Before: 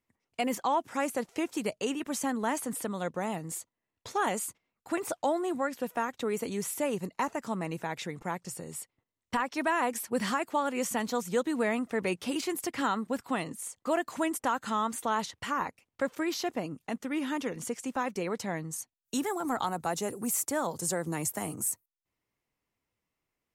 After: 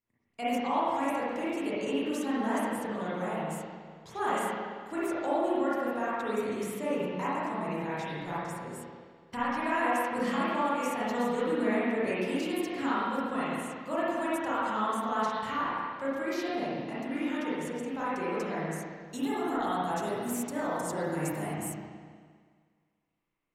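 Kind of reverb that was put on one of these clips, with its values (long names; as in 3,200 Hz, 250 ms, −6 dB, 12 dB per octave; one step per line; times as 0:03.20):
spring reverb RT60 1.8 s, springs 33/51/58 ms, chirp 70 ms, DRR −10 dB
level −9.5 dB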